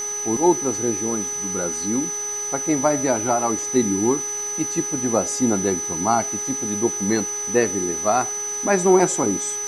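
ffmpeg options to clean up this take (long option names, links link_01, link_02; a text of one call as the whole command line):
ffmpeg -i in.wav -af "adeclick=threshold=4,bandreject=frequency=414.4:width_type=h:width=4,bandreject=frequency=828.8:width_type=h:width=4,bandreject=frequency=1243.2:width_type=h:width=4,bandreject=frequency=1657.6:width_type=h:width=4,bandreject=frequency=2072:width_type=h:width=4,bandreject=frequency=6000:width=30,afwtdn=0.01" out.wav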